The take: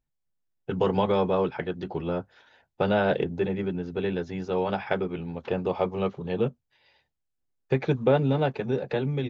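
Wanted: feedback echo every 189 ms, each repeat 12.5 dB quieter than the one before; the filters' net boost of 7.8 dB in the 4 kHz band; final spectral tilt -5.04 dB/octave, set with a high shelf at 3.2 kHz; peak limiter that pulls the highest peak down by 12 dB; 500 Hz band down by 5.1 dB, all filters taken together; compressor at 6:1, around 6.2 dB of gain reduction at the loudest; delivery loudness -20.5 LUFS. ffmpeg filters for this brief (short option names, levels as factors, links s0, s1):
-af "equalizer=f=500:t=o:g=-6.5,highshelf=f=3200:g=9,equalizer=f=4000:t=o:g=4,acompressor=threshold=0.0447:ratio=6,alimiter=level_in=1.06:limit=0.0631:level=0:latency=1,volume=0.944,aecho=1:1:189|378|567:0.237|0.0569|0.0137,volume=5.62"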